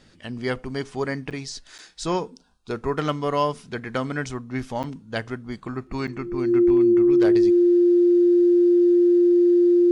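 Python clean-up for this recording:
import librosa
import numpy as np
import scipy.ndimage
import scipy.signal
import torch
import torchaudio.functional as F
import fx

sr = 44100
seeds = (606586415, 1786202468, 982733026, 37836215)

y = fx.fix_declip(x, sr, threshold_db=-11.5)
y = fx.notch(y, sr, hz=350.0, q=30.0)
y = fx.fix_interpolate(y, sr, at_s=(1.3, 1.78, 4.83, 6.07), length_ms=7.8)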